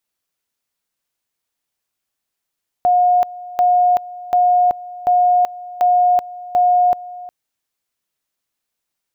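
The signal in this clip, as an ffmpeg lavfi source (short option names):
-f lavfi -i "aevalsrc='pow(10,(-10-19*gte(mod(t,0.74),0.38))/20)*sin(2*PI*718*t)':d=4.44:s=44100"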